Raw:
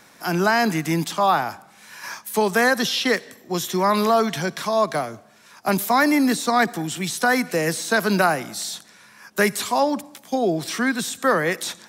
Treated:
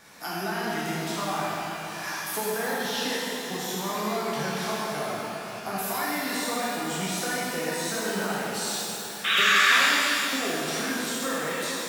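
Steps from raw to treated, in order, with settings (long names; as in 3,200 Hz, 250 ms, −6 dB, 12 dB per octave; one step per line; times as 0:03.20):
0:05.76–0:06.38: tilt shelving filter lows −5.5 dB
downward compressor 10 to 1, threshold −29 dBFS, peak gain reduction 16 dB
flanger 0.28 Hz, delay 1.6 ms, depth 7.5 ms, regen −79%
0:09.24–0:09.78: sound drawn into the spectrogram noise 1,100–3,900 Hz −27 dBFS
0:09.40–0:10.41: loudspeaker in its box 260–7,900 Hz, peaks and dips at 270 Hz +6 dB, 460 Hz −7 dB, 780 Hz −7 dB, 1,100 Hz +4 dB, 1,700 Hz +8 dB, 3,100 Hz −10 dB
on a send: feedback echo with a low-pass in the loop 420 ms, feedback 63%, level −10.5 dB
on the sum: reverb with rising layers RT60 2.3 s, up +12 semitones, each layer −8 dB, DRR −6.5 dB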